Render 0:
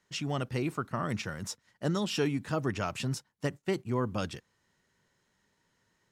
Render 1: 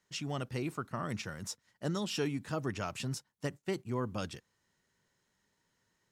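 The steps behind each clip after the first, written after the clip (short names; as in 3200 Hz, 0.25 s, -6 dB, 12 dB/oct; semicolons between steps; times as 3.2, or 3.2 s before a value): tone controls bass 0 dB, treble +3 dB; gain -4.5 dB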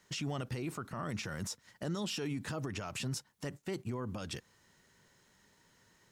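compressor 2:1, threshold -44 dBFS, peak gain reduction 8.5 dB; limiter -40 dBFS, peak gain reduction 11 dB; gain +10.5 dB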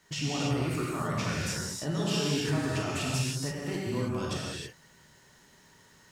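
non-linear reverb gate 0.35 s flat, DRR -6 dB; gain +1.5 dB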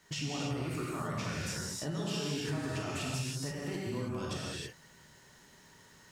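compressor 2:1, threshold -37 dBFS, peak gain reduction 7.5 dB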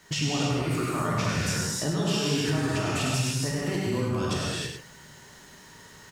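echo 0.101 s -6.5 dB; gain +8.5 dB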